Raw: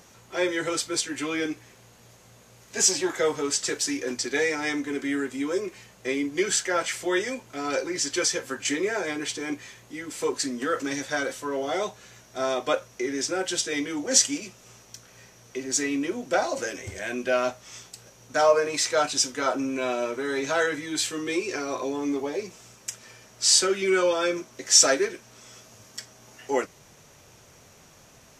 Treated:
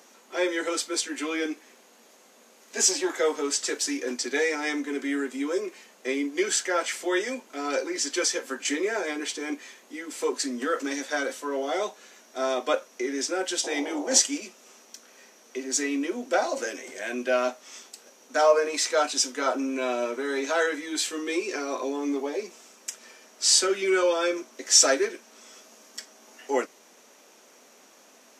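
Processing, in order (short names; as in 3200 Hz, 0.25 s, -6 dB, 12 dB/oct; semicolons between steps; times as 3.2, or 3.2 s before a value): 13.63–14.19 band noise 300–850 Hz -37 dBFS; elliptic high-pass 230 Hz, stop band 60 dB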